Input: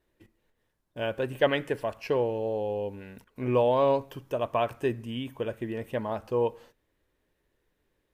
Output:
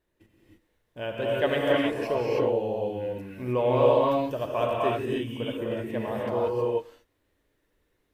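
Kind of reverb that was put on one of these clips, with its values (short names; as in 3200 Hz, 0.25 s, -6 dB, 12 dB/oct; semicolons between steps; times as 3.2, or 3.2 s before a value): non-linear reverb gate 0.34 s rising, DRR -4.5 dB; gain -3 dB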